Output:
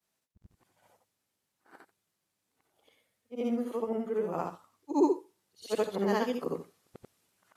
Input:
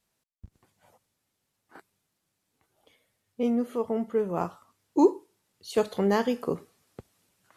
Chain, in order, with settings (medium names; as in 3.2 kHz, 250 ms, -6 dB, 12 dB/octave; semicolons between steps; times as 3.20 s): short-time spectra conjugated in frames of 180 ms; bass shelf 110 Hz -10.5 dB